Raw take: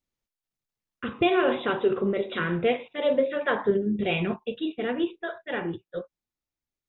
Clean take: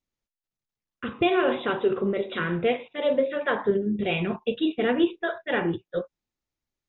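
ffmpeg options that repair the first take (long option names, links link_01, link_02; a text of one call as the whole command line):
ffmpeg -i in.wav -af "asetnsamples=nb_out_samples=441:pad=0,asendcmd='4.34 volume volume 5dB',volume=0dB" out.wav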